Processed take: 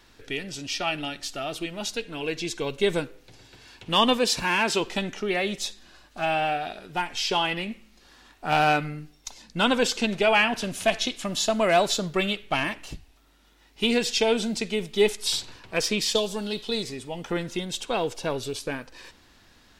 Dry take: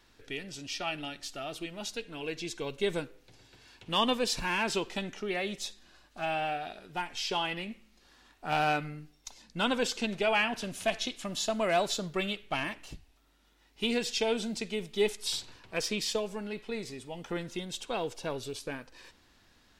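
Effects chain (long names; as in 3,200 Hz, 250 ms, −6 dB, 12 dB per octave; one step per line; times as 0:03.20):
0:04.18–0:04.79: high-pass filter 62 Hz → 220 Hz 6 dB per octave
0:16.15–0:16.83: high shelf with overshoot 2,800 Hz +7 dB, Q 3
level +7 dB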